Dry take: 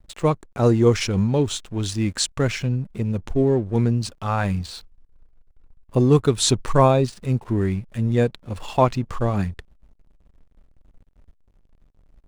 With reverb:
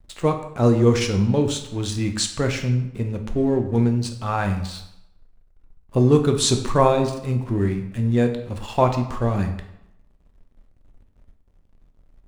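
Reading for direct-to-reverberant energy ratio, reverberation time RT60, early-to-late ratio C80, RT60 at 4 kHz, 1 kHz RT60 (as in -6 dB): 5.0 dB, 0.85 s, 12.0 dB, 0.60 s, 0.85 s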